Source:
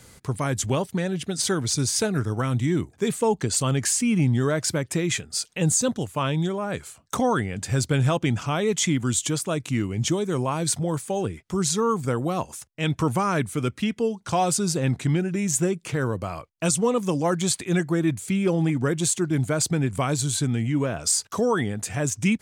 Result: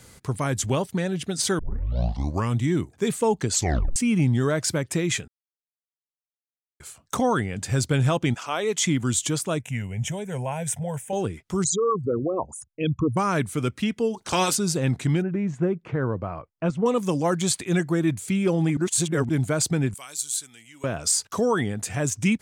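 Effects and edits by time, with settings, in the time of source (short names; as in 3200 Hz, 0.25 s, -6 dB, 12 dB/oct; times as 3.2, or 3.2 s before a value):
1.59 tape start 0.99 s
3.53 tape stop 0.43 s
5.28–6.8 mute
8.33–8.84 HPF 670 Hz -> 230 Hz
9.6–11.13 fixed phaser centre 1200 Hz, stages 6
11.64–13.17 formant sharpening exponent 3
14.13–14.54 spectral limiter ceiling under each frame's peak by 18 dB
15.22–16.86 LPF 1500 Hz
18.77–19.29 reverse
19.94–20.84 differentiator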